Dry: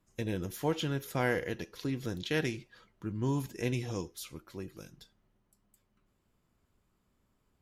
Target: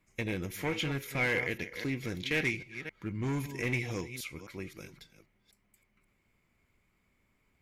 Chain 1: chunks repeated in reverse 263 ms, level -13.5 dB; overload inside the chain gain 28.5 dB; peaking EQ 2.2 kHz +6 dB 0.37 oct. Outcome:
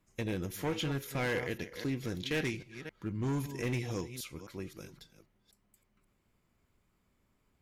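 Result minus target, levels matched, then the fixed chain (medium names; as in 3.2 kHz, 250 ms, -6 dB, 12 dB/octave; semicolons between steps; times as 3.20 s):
2 kHz band -4.5 dB
chunks repeated in reverse 263 ms, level -13.5 dB; overload inside the chain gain 28.5 dB; peaking EQ 2.2 kHz +17.5 dB 0.37 oct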